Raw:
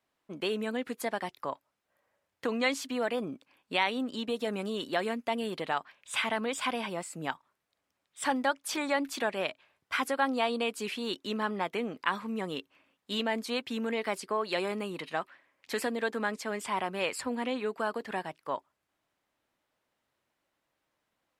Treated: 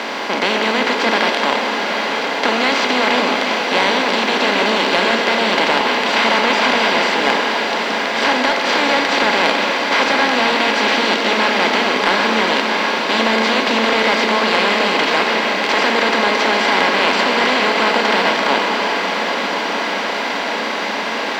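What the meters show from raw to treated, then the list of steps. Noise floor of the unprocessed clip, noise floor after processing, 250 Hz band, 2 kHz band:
-83 dBFS, -21 dBFS, +14.0 dB, +21.0 dB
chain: per-bin compression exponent 0.2; elliptic band-pass 190–5200 Hz, stop band 40 dB; high shelf 3600 Hz +6.5 dB; diffused feedback echo 0.758 s, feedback 68%, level -8 dB; Schroeder reverb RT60 3.6 s, combs from 28 ms, DRR 3.5 dB; sample leveller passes 1

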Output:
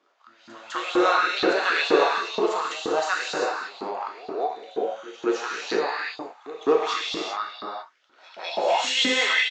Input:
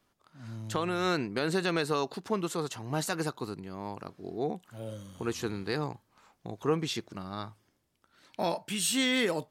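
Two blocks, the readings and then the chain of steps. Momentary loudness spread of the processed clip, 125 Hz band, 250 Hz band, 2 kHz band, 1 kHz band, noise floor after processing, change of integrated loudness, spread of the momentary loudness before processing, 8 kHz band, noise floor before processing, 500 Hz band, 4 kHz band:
13 LU, under -15 dB, +2.0 dB, +11.5 dB, +11.5 dB, -60 dBFS, +8.0 dB, 14 LU, +0.5 dB, -74 dBFS, +8.5 dB, +9.0 dB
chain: tone controls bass -12 dB, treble -6 dB; downsampling 16000 Hz; non-linear reverb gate 0.42 s flat, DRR -4.5 dB; LFO high-pass saw up 2.1 Hz 270–3900 Hz; pre-echo 0.205 s -18 dB; gain +3.5 dB

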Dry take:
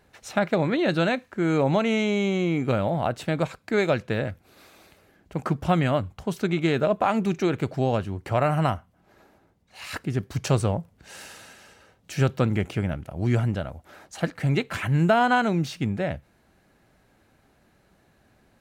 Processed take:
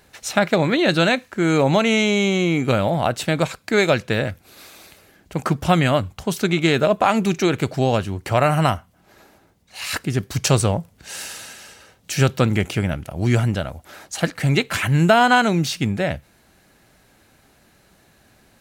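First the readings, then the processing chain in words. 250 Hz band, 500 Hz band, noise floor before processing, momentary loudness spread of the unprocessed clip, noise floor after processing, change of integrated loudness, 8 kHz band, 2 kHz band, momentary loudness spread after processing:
+4.5 dB, +5.0 dB, -63 dBFS, 11 LU, -57 dBFS, +5.5 dB, +13.0 dB, +7.5 dB, 11 LU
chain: high shelf 2600 Hz +9.5 dB; gain +4.5 dB

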